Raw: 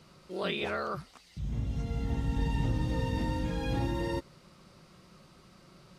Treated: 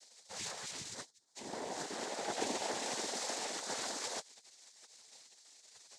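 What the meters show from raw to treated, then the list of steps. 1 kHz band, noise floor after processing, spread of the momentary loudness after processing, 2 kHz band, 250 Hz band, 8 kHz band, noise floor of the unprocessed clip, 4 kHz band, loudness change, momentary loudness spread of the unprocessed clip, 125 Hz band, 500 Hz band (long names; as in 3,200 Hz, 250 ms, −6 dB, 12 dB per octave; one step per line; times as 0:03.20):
−3.0 dB, −66 dBFS, 20 LU, −4.0 dB, −13.5 dB, +16.0 dB, −59 dBFS, +2.0 dB, −6.0 dB, 7 LU, −28.5 dB, −5.5 dB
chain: gate on every frequency bin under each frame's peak −25 dB weak
flat-topped bell 2,000 Hz −11.5 dB
cochlear-implant simulation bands 6
level +14.5 dB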